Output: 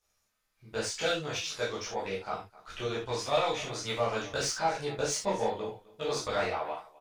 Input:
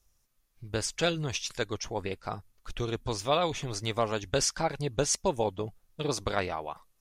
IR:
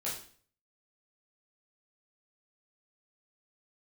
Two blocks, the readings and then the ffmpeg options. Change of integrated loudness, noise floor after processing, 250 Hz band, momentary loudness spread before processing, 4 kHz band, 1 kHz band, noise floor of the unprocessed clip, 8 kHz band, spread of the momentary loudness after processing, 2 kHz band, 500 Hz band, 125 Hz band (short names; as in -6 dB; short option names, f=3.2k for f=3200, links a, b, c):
-1.5 dB, -77 dBFS, -5.0 dB, 11 LU, -1.0 dB, +0.5 dB, -72 dBFS, -3.5 dB, 9 LU, +1.0 dB, -0.5 dB, -7.0 dB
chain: -filter_complex "[0:a]aecho=1:1:258:0.0794,asplit=2[a][b];[b]highpass=f=720:p=1,volume=15dB,asoftclip=type=tanh:threshold=-12.5dB[c];[a][c]amix=inputs=2:normalize=0,lowpass=f=3.8k:p=1,volume=-6dB[d];[1:a]atrim=start_sample=2205,afade=t=out:st=0.15:d=0.01,atrim=end_sample=7056[e];[d][e]afir=irnorm=-1:irlink=0,volume=-7.5dB"